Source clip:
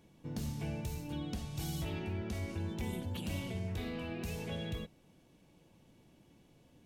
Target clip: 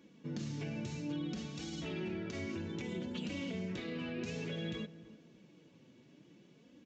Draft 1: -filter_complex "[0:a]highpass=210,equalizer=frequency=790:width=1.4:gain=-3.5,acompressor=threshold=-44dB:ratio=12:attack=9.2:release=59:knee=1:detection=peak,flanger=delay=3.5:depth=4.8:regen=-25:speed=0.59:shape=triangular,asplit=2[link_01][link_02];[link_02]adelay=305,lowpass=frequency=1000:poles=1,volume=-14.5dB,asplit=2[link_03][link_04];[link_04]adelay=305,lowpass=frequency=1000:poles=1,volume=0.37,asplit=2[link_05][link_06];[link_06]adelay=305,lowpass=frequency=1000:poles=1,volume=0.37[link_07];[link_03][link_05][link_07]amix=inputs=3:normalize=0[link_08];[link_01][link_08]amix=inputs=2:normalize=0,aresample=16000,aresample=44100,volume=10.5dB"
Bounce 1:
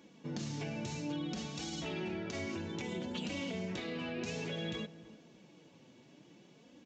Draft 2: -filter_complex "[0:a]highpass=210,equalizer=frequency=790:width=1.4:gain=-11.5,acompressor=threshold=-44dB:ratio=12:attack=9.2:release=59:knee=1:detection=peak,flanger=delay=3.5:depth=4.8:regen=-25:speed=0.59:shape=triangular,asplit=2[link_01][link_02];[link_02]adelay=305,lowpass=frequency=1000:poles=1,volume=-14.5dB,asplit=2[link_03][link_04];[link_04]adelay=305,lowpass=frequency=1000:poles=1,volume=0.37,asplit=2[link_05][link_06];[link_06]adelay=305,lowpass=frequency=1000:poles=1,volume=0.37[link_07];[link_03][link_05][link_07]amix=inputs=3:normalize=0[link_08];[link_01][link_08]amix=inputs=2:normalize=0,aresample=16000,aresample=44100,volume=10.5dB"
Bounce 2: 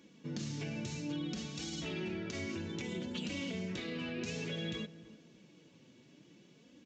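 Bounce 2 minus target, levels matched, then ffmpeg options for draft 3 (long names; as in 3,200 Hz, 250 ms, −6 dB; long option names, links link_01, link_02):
4,000 Hz band +3.5 dB
-filter_complex "[0:a]highpass=210,equalizer=frequency=790:width=1.4:gain=-11.5,acompressor=threshold=-44dB:ratio=12:attack=9.2:release=59:knee=1:detection=peak,highshelf=frequency=2800:gain=-7,flanger=delay=3.5:depth=4.8:regen=-25:speed=0.59:shape=triangular,asplit=2[link_01][link_02];[link_02]adelay=305,lowpass=frequency=1000:poles=1,volume=-14.5dB,asplit=2[link_03][link_04];[link_04]adelay=305,lowpass=frequency=1000:poles=1,volume=0.37,asplit=2[link_05][link_06];[link_06]adelay=305,lowpass=frequency=1000:poles=1,volume=0.37[link_07];[link_03][link_05][link_07]amix=inputs=3:normalize=0[link_08];[link_01][link_08]amix=inputs=2:normalize=0,aresample=16000,aresample=44100,volume=10.5dB"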